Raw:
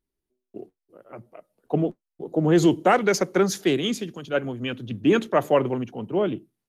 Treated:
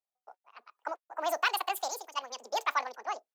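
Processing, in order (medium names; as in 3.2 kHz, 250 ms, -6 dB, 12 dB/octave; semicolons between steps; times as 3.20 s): high-pass 410 Hz 12 dB/octave; speed mistake 7.5 ips tape played at 15 ips; trim -8 dB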